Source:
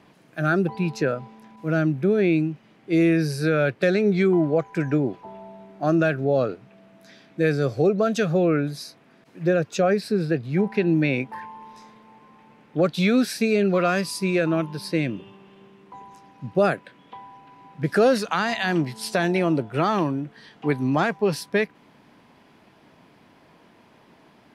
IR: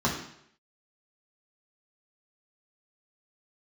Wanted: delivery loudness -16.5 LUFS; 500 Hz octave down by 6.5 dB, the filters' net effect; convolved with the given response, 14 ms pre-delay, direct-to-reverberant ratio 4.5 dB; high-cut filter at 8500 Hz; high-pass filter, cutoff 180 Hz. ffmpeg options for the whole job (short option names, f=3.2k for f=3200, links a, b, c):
-filter_complex "[0:a]highpass=180,lowpass=8.5k,equalizer=f=500:t=o:g=-8.5,asplit=2[a][b];[1:a]atrim=start_sample=2205,adelay=14[c];[b][c]afir=irnorm=-1:irlink=0,volume=-16.5dB[d];[a][d]amix=inputs=2:normalize=0,volume=7.5dB"